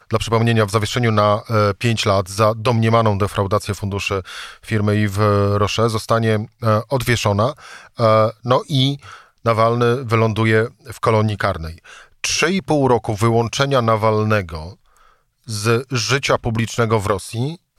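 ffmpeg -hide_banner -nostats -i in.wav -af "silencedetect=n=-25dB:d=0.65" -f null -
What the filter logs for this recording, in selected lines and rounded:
silence_start: 14.68
silence_end: 15.49 | silence_duration: 0.81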